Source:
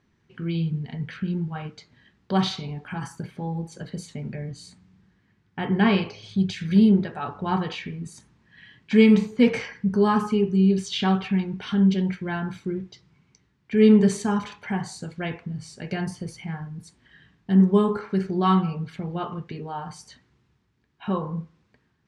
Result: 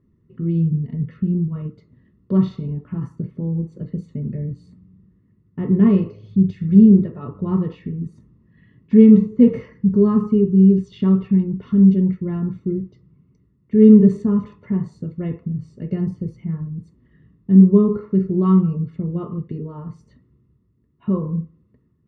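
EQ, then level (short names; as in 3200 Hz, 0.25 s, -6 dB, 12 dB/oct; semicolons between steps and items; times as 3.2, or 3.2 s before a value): running mean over 56 samples; +8.0 dB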